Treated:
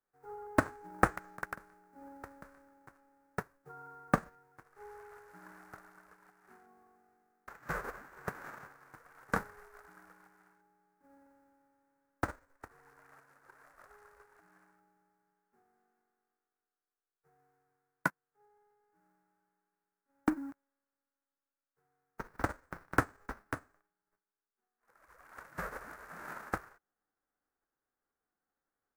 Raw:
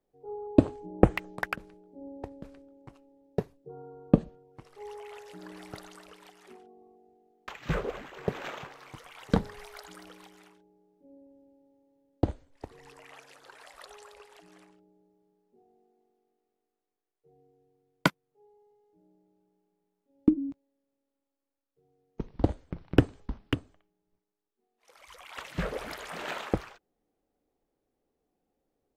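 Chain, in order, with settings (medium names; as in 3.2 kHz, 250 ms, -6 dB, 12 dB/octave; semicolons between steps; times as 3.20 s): formants flattened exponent 0.3; resonant high shelf 2.2 kHz -13 dB, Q 3; trim -8.5 dB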